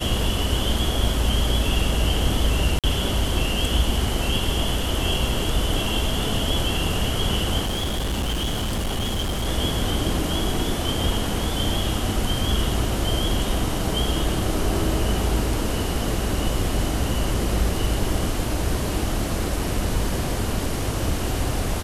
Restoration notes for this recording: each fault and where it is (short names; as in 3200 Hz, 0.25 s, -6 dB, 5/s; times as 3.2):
2.79–2.84 gap 47 ms
7.64–9.47 clipped -21 dBFS